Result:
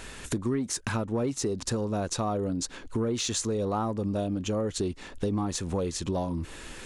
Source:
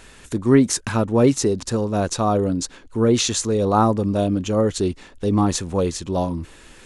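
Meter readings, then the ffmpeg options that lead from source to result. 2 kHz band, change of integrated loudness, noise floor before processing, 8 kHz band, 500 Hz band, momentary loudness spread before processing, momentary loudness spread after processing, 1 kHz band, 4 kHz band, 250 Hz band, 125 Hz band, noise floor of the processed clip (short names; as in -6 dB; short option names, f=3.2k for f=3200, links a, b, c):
-7.0 dB, -10.0 dB, -47 dBFS, -7.0 dB, -10.5 dB, 9 LU, 5 LU, -11.0 dB, -7.5 dB, -10.5 dB, -9.0 dB, -45 dBFS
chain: -filter_complex "[0:a]asplit=2[a][b];[b]asoftclip=type=tanh:threshold=-15.5dB,volume=-7.5dB[c];[a][c]amix=inputs=2:normalize=0,acompressor=threshold=-27dB:ratio=6"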